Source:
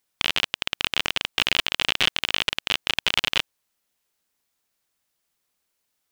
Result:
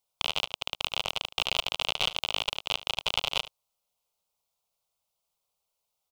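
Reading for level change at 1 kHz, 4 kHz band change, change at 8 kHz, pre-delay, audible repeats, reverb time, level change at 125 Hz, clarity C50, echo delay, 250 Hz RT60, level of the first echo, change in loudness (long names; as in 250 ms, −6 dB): −2.5 dB, −5.5 dB, −6.0 dB, no reverb audible, 1, no reverb audible, −5.0 dB, no reverb audible, 74 ms, no reverb audible, −16.0 dB, −6.0 dB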